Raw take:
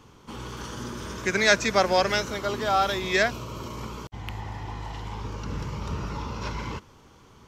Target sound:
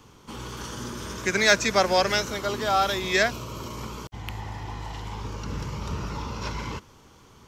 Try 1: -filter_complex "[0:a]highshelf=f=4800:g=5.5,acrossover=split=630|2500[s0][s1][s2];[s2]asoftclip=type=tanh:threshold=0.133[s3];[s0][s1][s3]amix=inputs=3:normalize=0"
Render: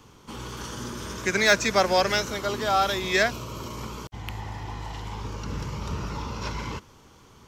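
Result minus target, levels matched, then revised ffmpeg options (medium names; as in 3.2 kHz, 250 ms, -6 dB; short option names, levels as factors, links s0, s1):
saturation: distortion +9 dB
-filter_complex "[0:a]highshelf=f=4800:g=5.5,acrossover=split=630|2500[s0][s1][s2];[s2]asoftclip=type=tanh:threshold=0.335[s3];[s0][s1][s3]amix=inputs=3:normalize=0"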